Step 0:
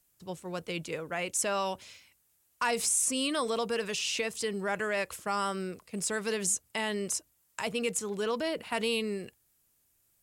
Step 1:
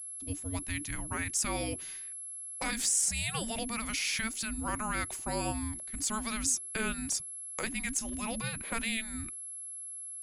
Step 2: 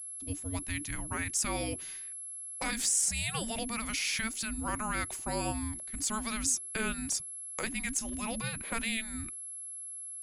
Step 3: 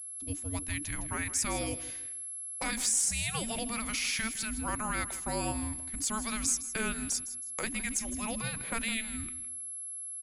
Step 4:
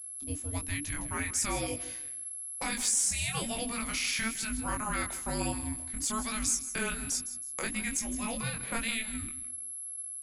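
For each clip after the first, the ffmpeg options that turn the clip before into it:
ffmpeg -i in.wav -af "afftfilt=real='re*lt(hypot(re,im),0.178)':imag='im*lt(hypot(re,im),0.178)':win_size=1024:overlap=0.75,afreqshift=-450,aeval=exprs='val(0)+0.01*sin(2*PI*11000*n/s)':channel_layout=same" out.wav
ffmpeg -i in.wav -af anull out.wav
ffmpeg -i in.wav -af "aecho=1:1:160|320|480:0.188|0.0565|0.017" out.wav
ffmpeg -i in.wav -af "flanger=delay=20:depth=3.8:speed=1.1,volume=3.5dB" out.wav

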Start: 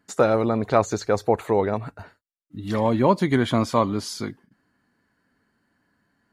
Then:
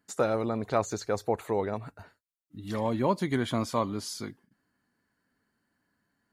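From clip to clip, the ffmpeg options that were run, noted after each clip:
ffmpeg -i in.wav -af "highshelf=frequency=6200:gain=7.5,volume=-8dB" out.wav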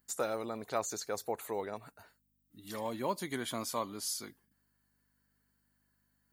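ffmpeg -i in.wav -af "aeval=exprs='val(0)+0.000891*(sin(2*PI*50*n/s)+sin(2*PI*2*50*n/s)/2+sin(2*PI*3*50*n/s)/3+sin(2*PI*4*50*n/s)/4+sin(2*PI*5*50*n/s)/5)':channel_layout=same,aemphasis=mode=production:type=bsi,volume=-6.5dB" out.wav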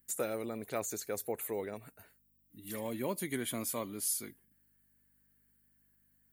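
ffmpeg -i in.wav -filter_complex "[0:a]acrossover=split=670|8000[link_01][link_02][link_03];[link_02]bandpass=frequency=2300:width_type=q:width=1.7:csg=0[link_04];[link_03]acontrast=72[link_05];[link_01][link_04][link_05]amix=inputs=3:normalize=0,volume=2dB" out.wav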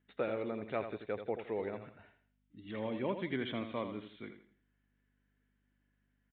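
ffmpeg -i in.wav -af "aecho=1:1:83|166|249|332:0.355|0.114|0.0363|0.0116,aresample=8000,aresample=44100" out.wav

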